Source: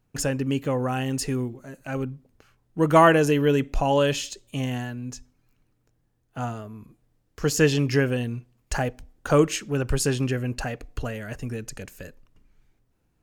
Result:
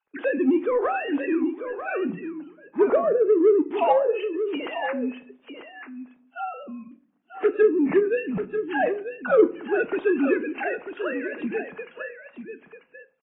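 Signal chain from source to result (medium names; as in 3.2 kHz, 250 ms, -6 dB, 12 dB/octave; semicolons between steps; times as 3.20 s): formants replaced by sine waves; low-pass that closes with the level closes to 370 Hz, closed at -15 dBFS; in parallel at -4 dB: saturation -20.5 dBFS, distortion -12 dB; on the sum: delay 941 ms -9.5 dB; on a send at -11.5 dB: reverberation RT60 0.60 s, pre-delay 5 ms; on the sum: AAC 16 kbps 16 kHz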